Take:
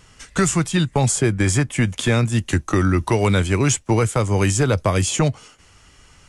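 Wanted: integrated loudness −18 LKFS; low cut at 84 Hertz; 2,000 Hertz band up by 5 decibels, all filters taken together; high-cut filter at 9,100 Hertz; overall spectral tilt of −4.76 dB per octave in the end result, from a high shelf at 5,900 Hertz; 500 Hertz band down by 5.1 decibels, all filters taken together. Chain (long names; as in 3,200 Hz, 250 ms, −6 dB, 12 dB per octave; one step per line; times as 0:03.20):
high-pass filter 84 Hz
low-pass filter 9,100 Hz
parametric band 500 Hz −7 dB
parametric band 2,000 Hz +7 dB
high-shelf EQ 5,900 Hz −4 dB
level +2 dB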